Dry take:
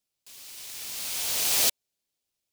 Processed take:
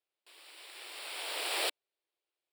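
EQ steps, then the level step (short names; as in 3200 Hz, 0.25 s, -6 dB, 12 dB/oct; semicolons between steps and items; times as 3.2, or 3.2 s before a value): running mean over 7 samples; brick-wall FIR high-pass 300 Hz; 0.0 dB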